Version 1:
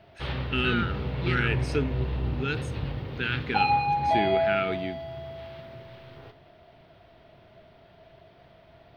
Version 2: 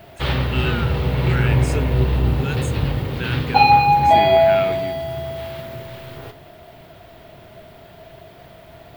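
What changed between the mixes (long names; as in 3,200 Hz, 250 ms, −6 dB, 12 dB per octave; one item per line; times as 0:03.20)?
background +11.0 dB
master: remove Savitzky-Golay smoothing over 15 samples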